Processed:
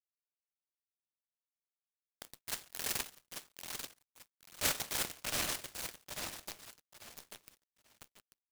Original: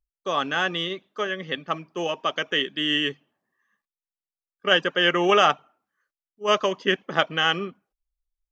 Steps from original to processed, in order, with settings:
hearing-aid frequency compression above 1,500 Hz 4 to 1
source passing by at 0:03.84, 7 m/s, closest 2.6 metres
Butterworth high-pass 590 Hz 96 dB per octave
notch filter 1,300 Hz, Q 9
bit reduction 5 bits
transient designer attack −2 dB, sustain −6 dB
repeating echo 840 ms, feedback 29%, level −6.5 dB
convolution reverb RT60 0.70 s, pre-delay 8 ms, DRR 8 dB
dead-zone distortion −58 dBFS
short delay modulated by noise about 2,100 Hz, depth 0.33 ms
level −4.5 dB

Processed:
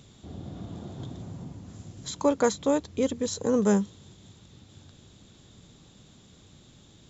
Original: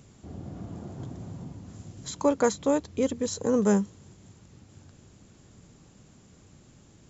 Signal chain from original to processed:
parametric band 3,600 Hz +13.5 dB 0.37 octaves, from 0:01.22 +5 dB, from 0:03.81 +14.5 dB

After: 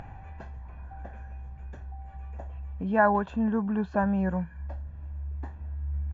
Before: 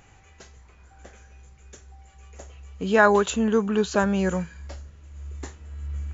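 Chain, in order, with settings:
low-pass filter 1,200 Hz 12 dB per octave
comb filter 1.2 ms, depth 63%
upward compression, threshold −27 dBFS
level −4 dB

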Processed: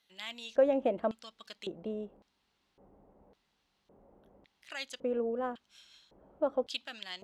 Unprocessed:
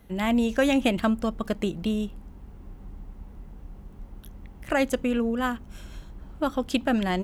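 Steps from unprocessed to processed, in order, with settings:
auto-filter band-pass square 0.9 Hz 560–4,100 Hz

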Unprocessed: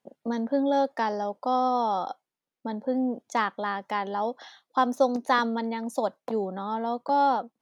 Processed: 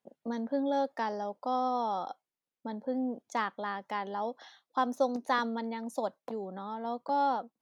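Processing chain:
0:06.14–0:06.85: downward compressor 2 to 1, threshold −30 dBFS, peak gain reduction 4.5 dB
level −6 dB

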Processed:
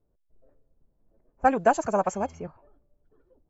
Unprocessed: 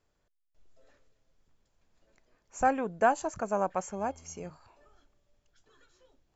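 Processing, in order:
phase-vocoder stretch with locked phases 0.55×
low-pass that shuts in the quiet parts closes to 510 Hz, open at −28 dBFS
level +6.5 dB

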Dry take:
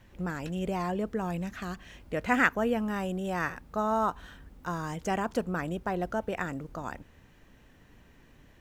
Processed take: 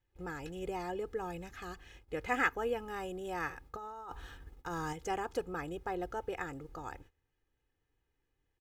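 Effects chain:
noise gate −49 dBFS, range −19 dB
comb filter 2.4 ms, depth 74%
0:03.72–0:04.93: compressor whose output falls as the input rises −34 dBFS, ratio −1
level −7.5 dB

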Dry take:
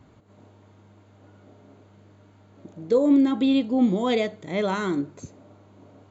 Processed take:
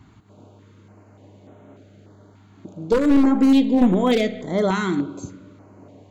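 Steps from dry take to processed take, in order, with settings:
wavefolder on the positive side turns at −16.5 dBFS
spring reverb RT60 1.3 s, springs 32/37 ms, chirp 25 ms, DRR 11.5 dB
notch on a step sequencer 3.4 Hz 540–4,800 Hz
level +5 dB

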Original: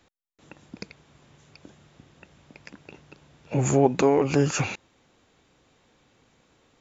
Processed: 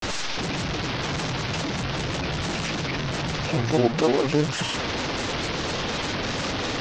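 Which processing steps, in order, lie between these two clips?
linear delta modulator 32 kbit/s, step −20 dBFS
granular cloud, spray 23 ms, pitch spread up and down by 3 semitones

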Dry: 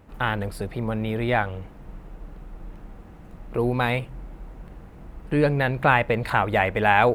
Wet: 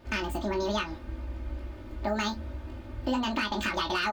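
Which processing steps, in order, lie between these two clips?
low-shelf EQ 130 Hz +3.5 dB
comb filter 5.7 ms, depth 90%
downward compressor 6 to 1, threshold −22 dBFS, peak gain reduction 11.5 dB
hard clipping −15.5 dBFS, distortion −29 dB
on a send: ambience of single reflections 33 ms −5.5 dB, 69 ms −13 dB
on the sum: wrong playback speed 45 rpm record played at 78 rpm
level −5 dB

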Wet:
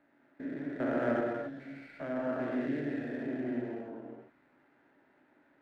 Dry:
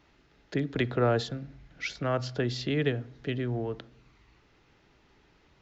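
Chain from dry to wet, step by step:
spectrum averaged block by block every 400 ms
loudspeaker in its box 260–2,000 Hz, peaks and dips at 270 Hz +9 dB, 420 Hz −6 dB, 610 Hz +6 dB, 1,200 Hz −5 dB, 1,600 Hz +6 dB
reverb whose tail is shaped and stops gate 310 ms flat, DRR −2 dB
windowed peak hold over 3 samples
level −4.5 dB

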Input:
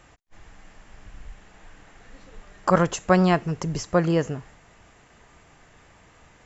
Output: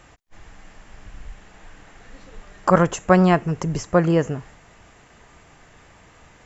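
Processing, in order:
dynamic equaliser 4,400 Hz, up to −7 dB, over −49 dBFS, Q 1.3
level +3.5 dB

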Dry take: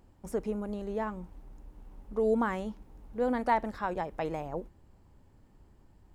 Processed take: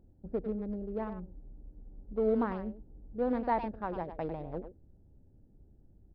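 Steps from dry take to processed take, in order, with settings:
adaptive Wiener filter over 41 samples
parametric band 3,500 Hz −10 dB 2.9 octaves
far-end echo of a speakerphone 100 ms, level −9 dB
downsampling to 11,025 Hz

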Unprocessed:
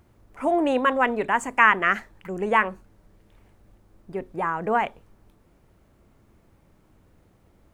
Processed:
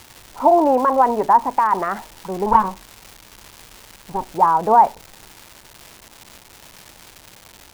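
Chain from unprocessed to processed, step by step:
0:02.46–0:04.29: lower of the sound and its delayed copy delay 0.78 ms
brickwall limiter −14 dBFS, peak gain reduction 10.5 dB
low-pass with resonance 910 Hz, resonance Q 4.9
surface crackle 540 per second −32 dBFS
level +3 dB

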